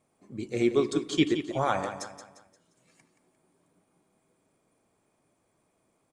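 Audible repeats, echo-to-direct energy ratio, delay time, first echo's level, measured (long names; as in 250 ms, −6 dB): 4, −9.5 dB, 175 ms, −10.0 dB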